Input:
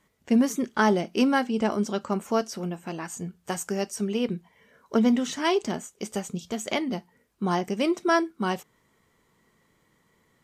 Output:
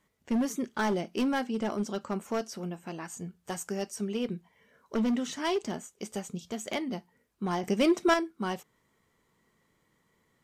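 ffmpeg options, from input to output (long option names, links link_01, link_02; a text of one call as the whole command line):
ffmpeg -i in.wav -filter_complex "[0:a]asoftclip=type=hard:threshold=-18.5dB,asettb=1/sr,asplit=3[link_01][link_02][link_03];[link_01]atrim=end=7.634[link_04];[link_02]atrim=start=7.63:end=8.14,asetpts=PTS-STARTPTS,afade=type=in:duration=0.004:curve=qsin,afade=type=out:start_time=0.506:duration=0.004:curve=qsin,acontrast=58[link_05];[link_03]atrim=start=8.136[link_06];[link_04][link_05]acrossfade=duration=0.004:curve1=hsin:curve2=qsin[link_07];[link_07][link_06]acrossfade=duration=0.004:curve1=qsin:curve2=hsin,volume=-5dB" out.wav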